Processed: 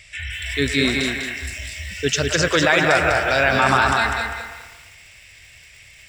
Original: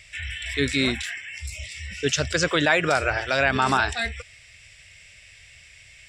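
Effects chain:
on a send: delay with a band-pass on its return 114 ms, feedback 59%, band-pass 1,100 Hz, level −6 dB
on the sum: feedback echo at a low word length 199 ms, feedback 35%, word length 8 bits, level −4 dB
level +2.5 dB

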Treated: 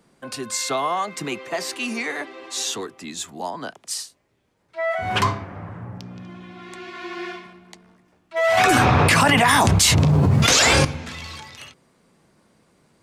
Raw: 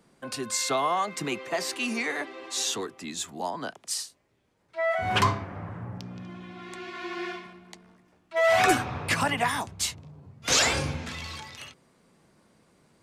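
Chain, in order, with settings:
0:08.57–0:10.85: envelope flattener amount 100%
level +2.5 dB

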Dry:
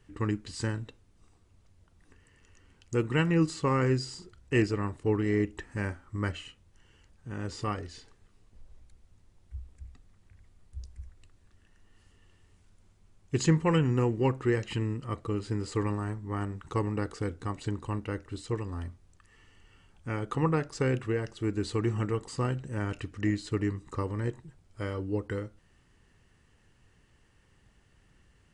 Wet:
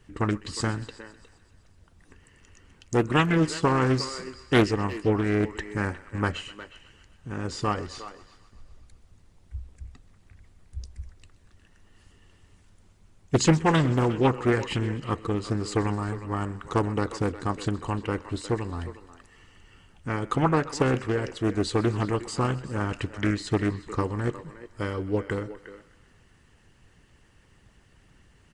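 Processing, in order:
on a send: feedback echo with a high-pass in the loop 127 ms, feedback 68%, level −17.5 dB
on the sum: harmonic and percussive parts rebalanced harmonic −6 dB
far-end echo of a speakerphone 360 ms, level −13 dB
highs frequency-modulated by the lows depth 0.64 ms
level +8 dB

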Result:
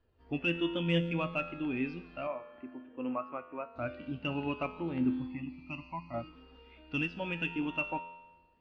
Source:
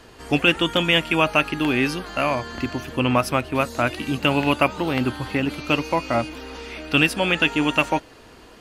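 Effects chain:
low-pass filter 4,800 Hz 24 dB per octave
low-shelf EQ 100 Hz +6.5 dB
soft clipping −9 dBFS, distortion −19 dB
0:02.27–0:03.76: three-way crossover with the lows and the highs turned down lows −15 dB, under 270 Hz, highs −21 dB, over 2,700 Hz
0:05.26–0:06.14: phaser with its sweep stopped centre 2,300 Hz, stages 8
tuned comb filter 85 Hz, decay 1.6 s, harmonics all, mix 80%
every bin expanded away from the loudest bin 1.5 to 1

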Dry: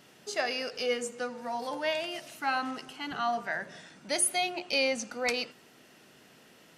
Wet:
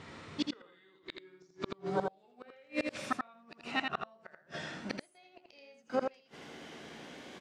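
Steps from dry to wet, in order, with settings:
gliding playback speed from 68% → 115%
high-shelf EQ 2,500 Hz −2.5 dB
pitch-shifted copies added −4 semitones −14 dB
double-tracking delay 13 ms −11 dB
gate with flip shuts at −27 dBFS, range −38 dB
high-frequency loss of the air 73 metres
single-tap delay 82 ms −4.5 dB
level +8 dB

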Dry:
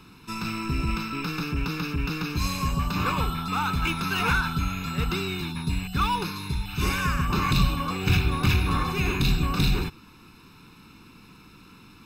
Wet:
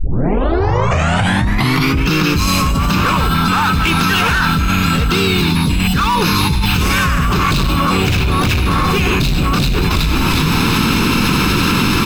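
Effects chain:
turntable start at the beginning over 2.08 s
gain into a clipping stage and back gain 21 dB
pitch-shifted copies added +3 semitones −8 dB
on a send: echo with shifted repeats 368 ms, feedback 37%, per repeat −100 Hz, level −19 dB
on the sum: envelope flattener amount 100%
level +6.5 dB

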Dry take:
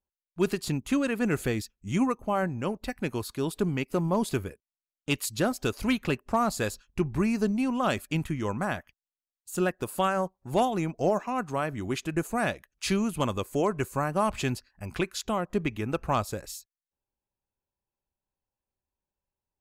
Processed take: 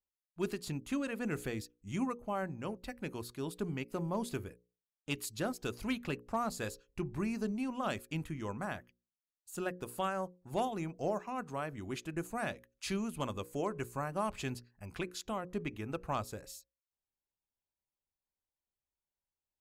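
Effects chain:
mains-hum notches 60/120/180/240/300/360/420/480/540 Hz
level −9 dB

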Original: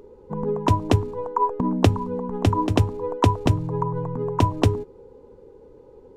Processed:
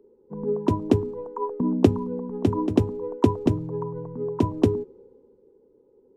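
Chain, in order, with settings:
hollow resonant body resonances 240/360 Hz, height 12 dB, ringing for 20 ms
multiband upward and downward expander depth 40%
level −11 dB

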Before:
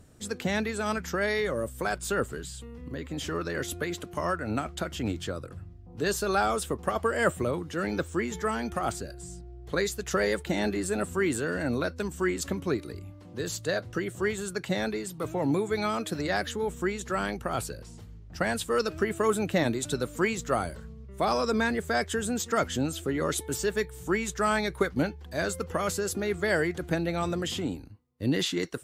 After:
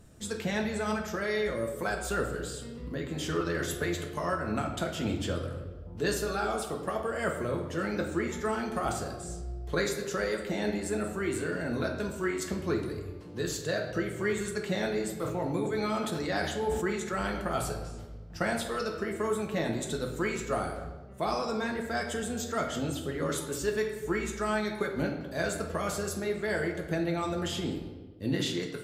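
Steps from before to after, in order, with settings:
speech leveller within 5 dB 0.5 s
convolution reverb RT60 1.3 s, pre-delay 5 ms, DRR 1 dB
0:15.14–0:17.41: level that may fall only so fast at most 49 dB per second
level −5.5 dB

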